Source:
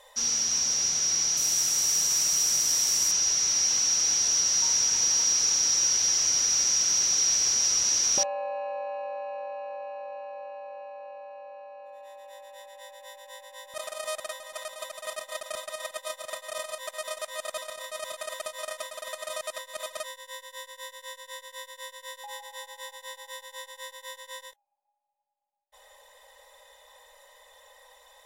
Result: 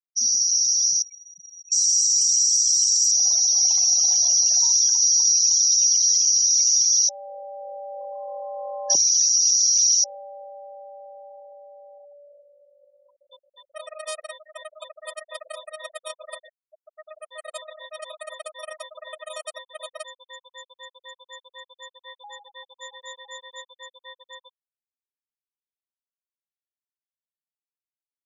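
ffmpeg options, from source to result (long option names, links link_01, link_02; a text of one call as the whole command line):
ffmpeg -i in.wav -filter_complex "[0:a]asettb=1/sr,asplit=3[link_01][link_02][link_03];[link_01]atrim=end=1.024[link_04];[link_02]atrim=start=1.02:end=1.72,asetpts=PTS-STARTPTS,afade=type=in:duration=0.004:curve=qsin,afade=type=out:start_time=0.696:duration=0.004:curve=qsin,lowpass=frequency=3400:width=0.5412,lowpass=frequency=3400:width=1.3066[link_05];[link_03]atrim=start=1.716[link_06];[link_04][link_05]acrossfade=duration=0.004:curve1=hsin:curve2=qsin[link_07];[link_07][link_06]acrossfade=duration=0.004:curve1=qsin:curve2=hsin,asettb=1/sr,asplit=3[link_08][link_09][link_10];[link_08]atrim=end=3.164[link_11];[link_09]atrim=start=3.16:end=4.6,asetpts=PTS-STARTPTS,afade=type=in:duration=0.004:curve=qsin,afade=type=out:start_time=1.436:duration=0.004:curve=qsin,lowshelf=frequency=460:width_type=q:width=3:gain=-12[link_12];[link_10]atrim=start=4.596[link_13];[link_11][link_12]acrossfade=duration=0.004:curve1=hsin:curve2=qsin[link_14];[link_14][link_13]acrossfade=duration=0.004:curve1=qsin:curve2=hsin,asettb=1/sr,asplit=3[link_15][link_16][link_17];[link_15]atrim=end=22.824[link_18];[link_16]atrim=start=22.82:end=23.61,asetpts=PTS-STARTPTS,afade=type=in:duration=0.004:curve=qsin,afade=type=out:start_time=0.786:duration=0.004:curve=qsin,aeval=exprs='val(0)+0.5*0.00668*sgn(val(0))':channel_layout=same[link_19];[link_17]atrim=start=23.606[link_20];[link_18][link_19]acrossfade=duration=0.004:curve1=hsin:curve2=qsin[link_21];[link_21][link_20]acrossfade=duration=0.004:curve1=qsin:curve2=hsin,asplit=4[link_22][link_23][link_24][link_25];[link_22]atrim=end=7.092[link_26];[link_23]atrim=start=7.088:end=10.042,asetpts=PTS-STARTPTS,areverse[link_27];[link_24]atrim=start=10.038:end=16.49,asetpts=PTS-STARTPTS,afade=type=out:start_time=6.448:duration=0.004:curve=hsin[link_28];[link_25]atrim=start=16.49,asetpts=PTS-STARTPTS,afade=type=in:duration=1.15[link_29];[link_26][link_27]acrossfade=duration=0.004:curve1=hsin:curve2=hsin[link_30];[link_28][link_29]concat=n=2:v=0:a=1[link_31];[link_30][link_31]acrossfade=duration=0.004:curve1=hsin:curve2=hsin,afftfilt=real='re*gte(hypot(re,im),0.0355)':imag='im*gte(hypot(re,im),0.0355)':win_size=1024:overlap=0.75,equalizer=frequency=8900:width=0.35:gain=7" out.wav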